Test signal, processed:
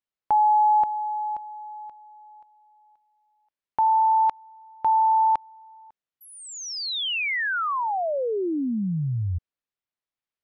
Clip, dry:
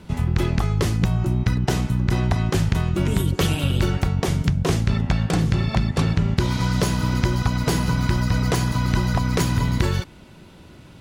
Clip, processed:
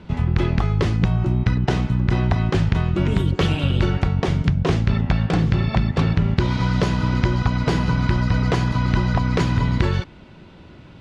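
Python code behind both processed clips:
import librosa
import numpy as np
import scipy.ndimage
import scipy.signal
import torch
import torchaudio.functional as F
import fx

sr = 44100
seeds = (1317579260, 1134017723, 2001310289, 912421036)

y = scipy.signal.sosfilt(scipy.signal.butter(2, 3800.0, 'lowpass', fs=sr, output='sos'), x)
y = y * librosa.db_to_amplitude(1.5)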